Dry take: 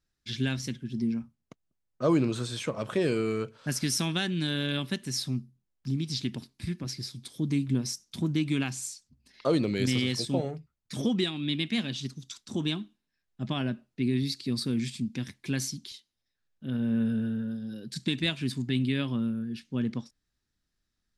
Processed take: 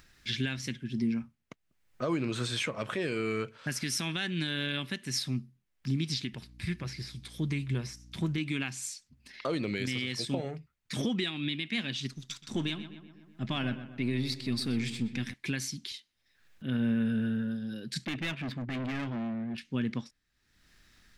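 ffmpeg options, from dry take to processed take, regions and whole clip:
-filter_complex "[0:a]asettb=1/sr,asplit=3[a][b][c];[a]atrim=end=6.334[d];[b]atrim=start=6.33:end=8.38,asetpts=PTS-STARTPTS,afade=t=in:d=0.004:c=qsin,afade=t=out:st=2.046:d=0.004:c=qsin,equalizer=f=260:w=4.2:g=-12.5,acrossover=split=2600[e][f];[f]acompressor=threshold=-45dB:ratio=4:attack=1:release=60[g];[e][g]amix=inputs=2:normalize=0,aeval=exprs='val(0)+0.00251*(sin(2*PI*60*n/s)+sin(2*PI*2*60*n/s)/2+sin(2*PI*3*60*n/s)/3+sin(2*PI*4*60*n/s)/4+sin(2*PI*5*60*n/s)/5)':c=same[h];[c]atrim=start=8.376[i];[d][h]acrossfade=d=0.004:c1=hsin:c2=qsin[j];[j][i]acrossfade=d=0.004:c1=qsin:c2=hsin,asettb=1/sr,asplit=3[k][l][m];[k]atrim=end=12.114[n];[l]atrim=start=12.11:end=15.34,asetpts=PTS-STARTPTS,afade=t=in:d=0.004:c=qsin,afade=t=out:st=3.226:d=0.004:c=qsin,aeval=exprs='if(lt(val(0),0),0.708*val(0),val(0))':c=same,asplit=2[o][p];[p]adelay=125,lowpass=f=2.6k:p=1,volume=-12dB,asplit=2[q][r];[r]adelay=125,lowpass=f=2.6k:p=1,volume=0.5,asplit=2[s][t];[t]adelay=125,lowpass=f=2.6k:p=1,volume=0.5,asplit=2[u][v];[v]adelay=125,lowpass=f=2.6k:p=1,volume=0.5,asplit=2[w][x];[x]adelay=125,lowpass=f=2.6k:p=1,volume=0.5[y];[o][q][s][u][w][y]amix=inputs=6:normalize=0,atrim=end_sample=142443[z];[m]atrim=start=15.336[aa];[n][z]acrossfade=d=0.004:c1=hsin:c2=qsin[ab];[ab][aa]acrossfade=d=0.004:c1=qsin:c2=hsin,asettb=1/sr,asplit=3[ac][ad][ae];[ac]atrim=end=18.054[af];[ad]atrim=start=18.05:end=19.58,asetpts=PTS-STARTPTS,afade=t=in:d=0.004:c=qsin,afade=t=out:st=1.526:d=0.004:c=qsin,volume=32.5dB,asoftclip=hard,volume=-32.5dB,adynamicsmooth=sensitivity=6.5:basefreq=1.6k[ag];[ae]atrim=start=19.576[ah];[af][ag]acrossfade=d=0.004:c1=hsin:c2=qsin[ai];[ai][ah]acrossfade=d=0.004:c1=qsin:c2=hsin,equalizer=f=2.1k:t=o:w=1.4:g=8.5,acompressor=mode=upward:threshold=-45dB:ratio=2.5,alimiter=limit=-21dB:level=0:latency=1:release=295"

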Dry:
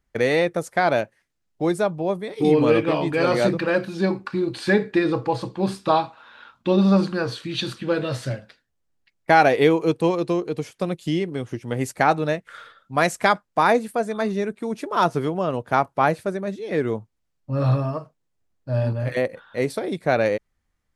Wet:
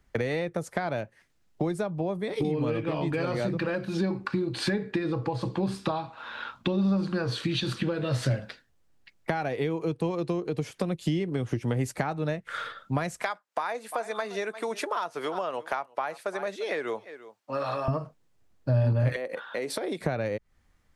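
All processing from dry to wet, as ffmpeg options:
-filter_complex "[0:a]asettb=1/sr,asplit=3[a][b][c];[a]atrim=end=13.224[d];[b]atrim=start=13.22:end=17.88,asetpts=PTS-STARTPTS,afade=t=in:d=0.004:c=qsin,afade=t=out:st=4.656:d=0.004:c=qsin,highpass=650,aecho=1:1:347:0.0708,atrim=end_sample=205506[e];[c]atrim=start=17.876[f];[d][e]acrossfade=d=0.004:c1=hsin:c2=qsin[g];[g][f]acrossfade=d=0.004:c1=qsin:c2=hsin,asettb=1/sr,asplit=3[h][i][j];[h]atrim=end=19.164[k];[i]atrim=start=19.16:end=20.01,asetpts=PTS-STARTPTS,afade=t=in:d=0.004:c=qsin,afade=t=out:st=0.846:d=0.004:c=qsin,highpass=330,acompressor=threshold=-34dB:ratio=6:attack=3.2:release=140:knee=1:detection=peak[l];[j]atrim=start=20.006[m];[k][l]acrossfade=d=0.004:c1=hsin:c2=qsin[n];[n][m]acrossfade=d=0.004:c1=qsin:c2=hsin,acompressor=threshold=-32dB:ratio=2,highshelf=f=7.3k:g=-4.5,acrossover=split=150[o][p];[p]acompressor=threshold=-36dB:ratio=6[q];[o][q]amix=inputs=2:normalize=0,volume=8.5dB"

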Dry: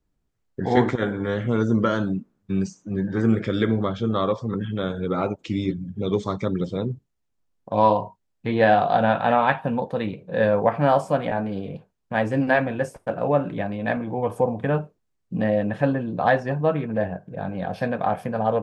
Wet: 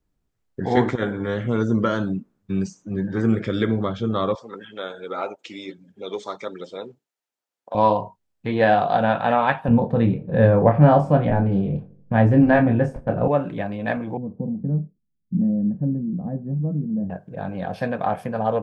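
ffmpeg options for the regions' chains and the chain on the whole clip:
-filter_complex "[0:a]asettb=1/sr,asplit=3[a][b][c];[a]atrim=end=4.354[d];[b]atrim=start=4.35:end=7.75,asetpts=PTS-STARTPTS,afade=t=in:d=0.004:c=qsin,afade=t=out:st=3.396:d=0.004:c=qsin,highpass=540,bandreject=f=1.1k:w=11[e];[c]atrim=start=7.746[f];[d][e]acrossfade=d=0.004:c1=hsin:c2=qsin[g];[g][f]acrossfade=d=0.004:c1=qsin:c2=hsin,asettb=1/sr,asplit=3[h][i][j];[h]atrim=end=9.684[k];[i]atrim=start=9.68:end=13.28,asetpts=PTS-STARTPTS,afade=t=in:d=0.004:c=qsin,afade=t=out:st=3.596:d=0.004:c=qsin,aemphasis=mode=reproduction:type=riaa,asplit=2[l][m];[m]adelay=26,volume=-6dB[n];[l][n]amix=inputs=2:normalize=0,atrim=end_sample=158760,asplit=2[o][p];[p]adelay=83,lowpass=f=1.4k:p=1,volume=-20dB,asplit=2[q][r];[r]adelay=83,lowpass=f=1.4k:p=1,volume=0.54,asplit=2[s][t];[t]adelay=83,lowpass=f=1.4k:p=1,volume=0.54,asplit=2[u][v];[v]adelay=83,lowpass=f=1.4k:p=1,volume=0.54[w];[o][q][s][u][w]amix=inputs=5:normalize=0,atrim=end_sample=158760[x];[j]atrim=start=13.276[y];[k][x]acrossfade=d=0.004:c1=hsin:c2=qsin[z];[z][y]acrossfade=d=0.004:c1=qsin:c2=hsin,asettb=1/sr,asplit=3[aa][ab][ac];[aa]atrim=end=14.174[ad];[ab]atrim=start=14.17:end=17.1,asetpts=PTS-STARTPTS,afade=t=in:d=0.004:c=qsin,afade=t=out:st=2.926:d=0.004:c=qsin,lowpass=f=200:t=q:w=2.2,equalizer=f=110:w=6.1:g=-14.5[ae];[ac]atrim=start=17.096[af];[ad][ae]acrossfade=d=0.004:c1=hsin:c2=qsin[ag];[ag][af]acrossfade=d=0.004:c1=qsin:c2=hsin"

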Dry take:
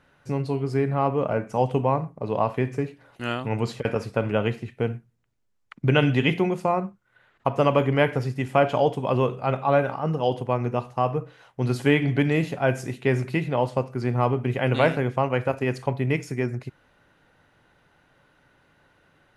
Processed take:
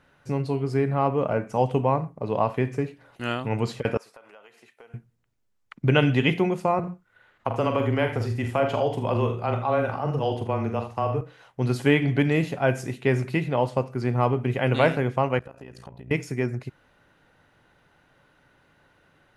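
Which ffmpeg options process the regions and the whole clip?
-filter_complex "[0:a]asettb=1/sr,asplit=3[a][b][c];[a]atrim=end=3.974[d];[b]atrim=start=3.97:end=4.94,asetpts=PTS-STARTPTS,afade=t=in:d=0.004:c=qsin,afade=t=out:st=0.966:d=0.004:c=qsin,highpass=940,acompressor=threshold=-43dB:ratio=6:attack=3.2:release=140:knee=1:detection=peak,equalizer=f=2.5k:t=o:w=2:g=-7.5[e];[c]atrim=start=4.936[f];[d][e]acrossfade=d=0.004:c1=hsin:c2=qsin[g];[g][f]acrossfade=d=0.004:c1=qsin:c2=hsin,asettb=1/sr,asplit=3[h][i][j];[h]atrim=end=6.794[k];[i]atrim=start=6.79:end=11.21,asetpts=PTS-STARTPTS,afade=t=in:d=0.004:c=qsin,afade=t=out:st=4.416:d=0.004:c=qsin,afreqshift=-14,acompressor=threshold=-22dB:ratio=2:attack=3.2:release=140:knee=1:detection=peak,aecho=1:1:44|78:0.422|0.266,atrim=end_sample=194922[l];[j]atrim=start=11.206[m];[k][l]acrossfade=d=0.004:c1=hsin:c2=qsin[n];[n][m]acrossfade=d=0.004:c1=qsin:c2=hsin,asettb=1/sr,asplit=3[o][p][q];[o]atrim=end=15.394[r];[p]atrim=start=15.39:end=16.11,asetpts=PTS-STARTPTS,afade=t=in:d=0.004:c=qsin,afade=t=out:st=0.716:d=0.004:c=qsin,tremolo=f=58:d=0.824,bandreject=f=2.2k:w=7.2,acompressor=threshold=-38dB:ratio=10:attack=3.2:release=140:knee=1:detection=peak[s];[q]atrim=start=16.106[t];[r][s]acrossfade=d=0.004:c1=hsin:c2=qsin[u];[u][t]acrossfade=d=0.004:c1=qsin:c2=hsin"

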